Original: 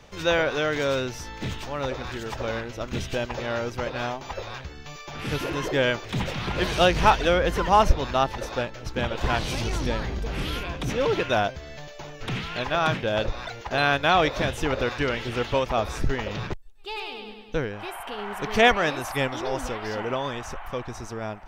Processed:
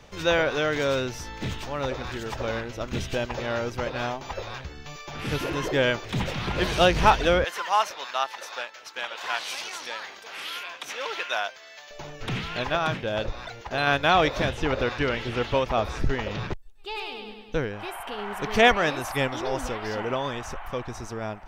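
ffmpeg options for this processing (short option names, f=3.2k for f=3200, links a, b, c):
-filter_complex "[0:a]asettb=1/sr,asplit=3[a][b][c];[a]atrim=end=7.444[d];[b]atrim=start=7.44:end=11.91,asetpts=PTS-STARTPTS,afade=t=in:d=0.004:c=qsin,afade=t=out:st=4.466:d=0.004:c=qsin,highpass=990[e];[c]atrim=start=11.906[f];[d][e]acrossfade=d=0.004:c1=hsin:c2=qsin[g];[g][f]acrossfade=d=0.004:c1=qsin:c2=hsin,asettb=1/sr,asplit=3[h][i][j];[h]atrim=end=14.494[k];[i]atrim=start=14.49:end=16.95,asetpts=PTS-STARTPTS,afade=t=in:d=0.004:c=qsin,afade=t=out:st=2.456:d=0.004:c=qsin,acrossover=split=5700[l][m];[m]acompressor=threshold=-56dB:ratio=4:attack=1:release=60[n];[l][n]amix=inputs=2:normalize=0[o];[j]atrim=start=16.946[p];[k][o]acrossfade=d=0.004:c1=hsin:c2=qsin[q];[q][p]acrossfade=d=0.004:c1=qsin:c2=hsin,asplit=3[r][s][t];[r]atrim=end=12.772[u];[s]atrim=start=12.768:end=13.872,asetpts=PTS-STARTPTS,volume=-3dB[v];[t]atrim=start=13.868[w];[u][v]acrossfade=d=0.004:c1=hsin:c2=hsin[x];[x][w]acrossfade=d=0.004:c1=hsin:c2=hsin"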